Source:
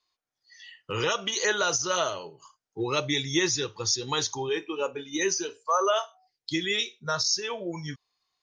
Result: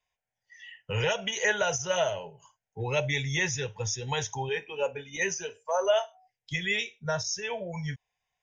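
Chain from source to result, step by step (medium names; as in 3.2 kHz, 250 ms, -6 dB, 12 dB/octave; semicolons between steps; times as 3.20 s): low-pass 7.4 kHz 24 dB/octave; bass shelf 240 Hz +5.5 dB; static phaser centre 1.2 kHz, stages 6; trim +2.5 dB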